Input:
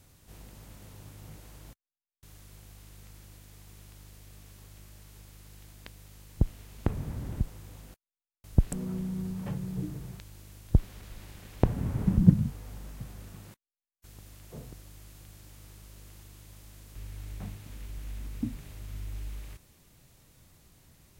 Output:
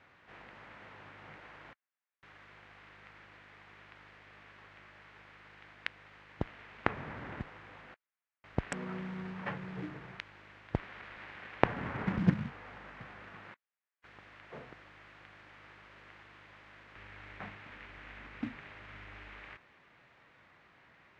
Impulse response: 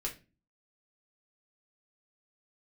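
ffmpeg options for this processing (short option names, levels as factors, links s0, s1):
-af "adynamicsmooth=sensitivity=7:basefreq=1900,bandpass=f=1900:t=q:w=1.5:csg=0,volume=6.31"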